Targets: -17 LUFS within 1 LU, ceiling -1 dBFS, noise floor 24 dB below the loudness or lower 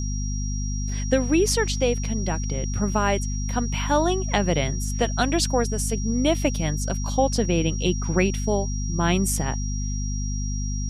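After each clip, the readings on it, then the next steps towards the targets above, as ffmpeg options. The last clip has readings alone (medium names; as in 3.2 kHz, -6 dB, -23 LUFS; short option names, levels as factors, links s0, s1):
hum 50 Hz; highest harmonic 250 Hz; hum level -24 dBFS; steady tone 5.7 kHz; tone level -35 dBFS; loudness -24.0 LUFS; peak level -6.5 dBFS; loudness target -17.0 LUFS
-> -af "bandreject=f=50:t=h:w=4,bandreject=f=100:t=h:w=4,bandreject=f=150:t=h:w=4,bandreject=f=200:t=h:w=4,bandreject=f=250:t=h:w=4"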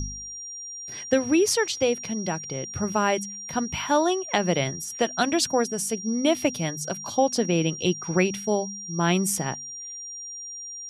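hum not found; steady tone 5.7 kHz; tone level -35 dBFS
-> -af "bandreject=f=5700:w=30"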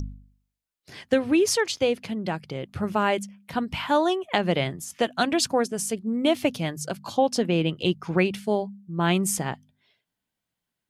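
steady tone not found; loudness -25.5 LUFS; peak level -7.0 dBFS; loudness target -17.0 LUFS
-> -af "volume=2.66,alimiter=limit=0.891:level=0:latency=1"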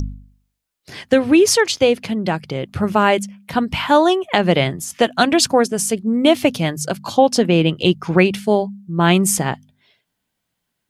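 loudness -17.0 LUFS; peak level -1.0 dBFS; noise floor -76 dBFS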